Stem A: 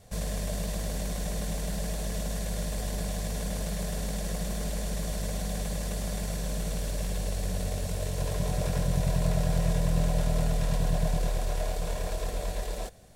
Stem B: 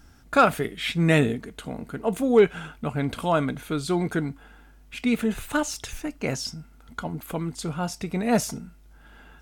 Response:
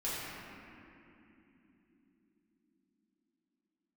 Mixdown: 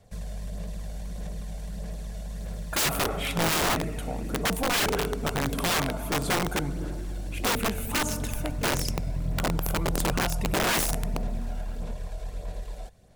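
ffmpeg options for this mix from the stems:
-filter_complex "[0:a]acrossover=split=180[a][b];[b]acompressor=threshold=-38dB:ratio=6[c];[a][c]amix=inputs=2:normalize=0,volume=-5.5dB[d];[1:a]firequalizer=gain_entry='entry(160,0);entry(290,-2);entry(450,5);entry(630,5);entry(1600,-2);entry(2700,1);entry(4200,-3);entry(11000,13)':delay=0.05:min_phase=1,adelay=2400,volume=-3.5dB,asplit=2[e][f];[f]volume=-16dB[g];[2:a]atrim=start_sample=2205[h];[g][h]afir=irnorm=-1:irlink=0[i];[d][e][i]amix=inputs=3:normalize=0,highshelf=f=4.8k:g=-5,aphaser=in_gain=1:out_gain=1:delay=1.4:decay=0.34:speed=1.6:type=sinusoidal,aeval=exprs='(mod(9.44*val(0)+1,2)-1)/9.44':c=same"

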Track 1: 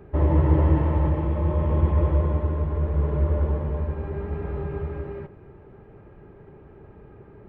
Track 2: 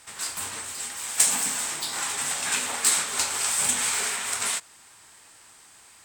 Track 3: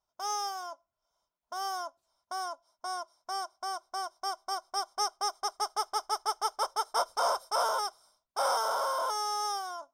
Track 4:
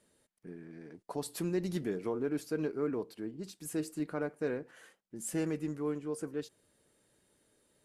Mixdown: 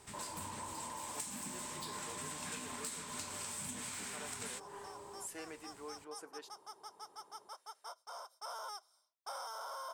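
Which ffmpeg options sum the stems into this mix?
-filter_complex "[0:a]highpass=390,asoftclip=type=hard:threshold=-33.5dB,lowpass=f=1k:t=q:w=9.5,volume=-16.5dB[a];[1:a]lowshelf=f=330:t=q:w=1.5:g=12.5,volume=-10dB[b];[2:a]highpass=f=820:p=1,adelay=900,volume=-8dB,afade=t=in:st=8.28:d=0.47:silence=0.334965[c];[3:a]highpass=720,volume=-3dB[d];[a][b][c][d]amix=inputs=4:normalize=0,acompressor=threshold=-41dB:ratio=6"

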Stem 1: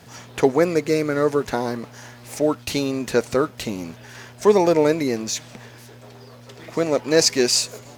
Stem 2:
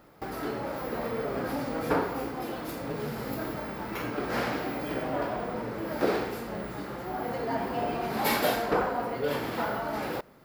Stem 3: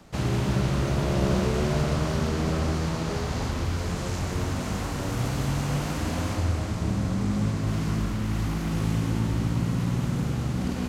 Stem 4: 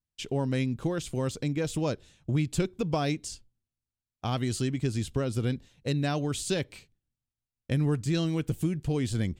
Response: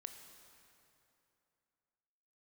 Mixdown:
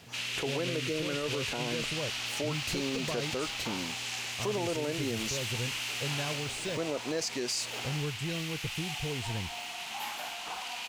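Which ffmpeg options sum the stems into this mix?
-filter_complex "[0:a]acompressor=threshold=-21dB:ratio=2,volume=-7.5dB[a];[1:a]lowshelf=f=630:t=q:w=3:g=-8,adelay=1750,volume=-19dB,asplit=2[b][c];[c]volume=-0.5dB[d];[2:a]highpass=f=2.7k:t=q:w=2.9,volume=-0.5dB[e];[3:a]aecho=1:1:1.9:0.43,adelay=150,volume=-8dB[f];[4:a]atrim=start_sample=2205[g];[d][g]afir=irnorm=-1:irlink=0[h];[a][b][e][f][h]amix=inputs=5:normalize=0,alimiter=limit=-23dB:level=0:latency=1:release=41"

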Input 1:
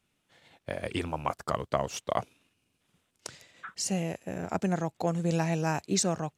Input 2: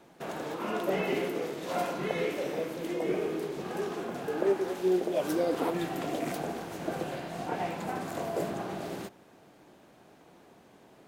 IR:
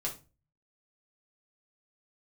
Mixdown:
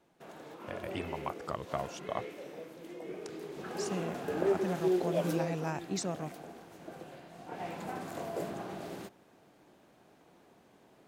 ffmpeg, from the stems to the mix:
-filter_complex "[0:a]highshelf=f=8.9k:g=-12,volume=-7dB[a];[1:a]volume=5.5dB,afade=t=in:st=3.28:d=0.64:silence=0.316228,afade=t=out:st=5.19:d=0.41:silence=0.298538,afade=t=in:st=7.44:d=0.3:silence=0.398107[b];[a][b]amix=inputs=2:normalize=0"

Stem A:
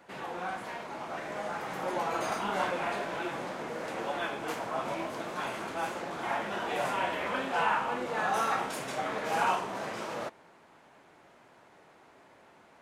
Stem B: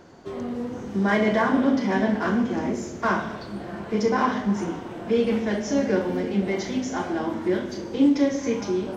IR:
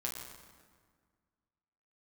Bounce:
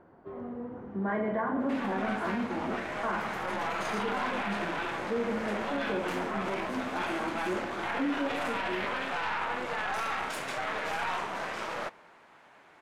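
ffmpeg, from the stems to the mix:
-filter_complex "[0:a]aeval=exprs='0.2*(cos(1*acos(clip(val(0)/0.2,-1,1)))-cos(1*PI/2))+0.0355*(cos(6*acos(clip(val(0)/0.2,-1,1)))-cos(6*PI/2))':c=same,adelay=1600,volume=-4.5dB,asplit=2[a][b];[b]volume=-22.5dB[c];[1:a]lowpass=1.1k,volume=-10dB[d];[2:a]atrim=start_sample=2205[e];[c][e]afir=irnorm=-1:irlink=0[f];[a][d][f]amix=inputs=3:normalize=0,equalizer=f=1.8k:w=0.45:g=8,alimiter=limit=-22.5dB:level=0:latency=1:release=10"

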